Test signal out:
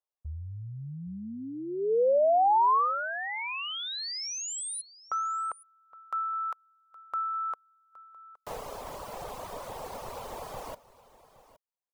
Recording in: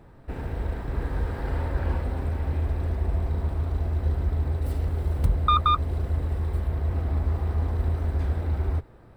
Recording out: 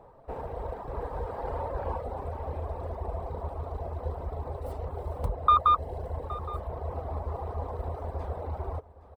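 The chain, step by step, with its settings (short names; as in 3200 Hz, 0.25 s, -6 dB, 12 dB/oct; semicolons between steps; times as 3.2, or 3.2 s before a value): reverb removal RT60 0.82 s; band shelf 710 Hz +14.5 dB; on a send: echo 0.817 s -18.5 dB; on the sum: gain -8.5 dB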